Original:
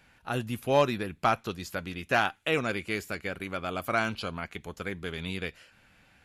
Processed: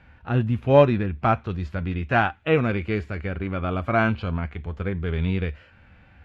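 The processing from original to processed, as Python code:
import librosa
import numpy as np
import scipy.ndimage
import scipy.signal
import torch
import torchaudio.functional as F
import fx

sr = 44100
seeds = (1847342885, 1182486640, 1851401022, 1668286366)

y = scipy.signal.sosfilt(scipy.signal.butter(2, 2300.0, 'lowpass', fs=sr, output='sos'), x)
y = fx.peak_eq(y, sr, hz=73.0, db=10.0, octaves=0.48)
y = fx.hpss(y, sr, part='harmonic', gain_db=9)
y = fx.low_shelf(y, sr, hz=190.0, db=5.0)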